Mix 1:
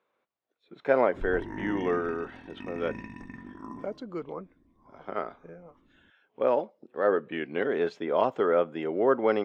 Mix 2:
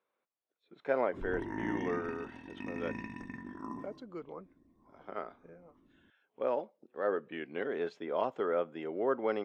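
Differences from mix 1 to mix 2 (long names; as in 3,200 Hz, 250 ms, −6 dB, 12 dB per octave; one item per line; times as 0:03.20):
speech −7.5 dB
master: add low-shelf EQ 75 Hz −9 dB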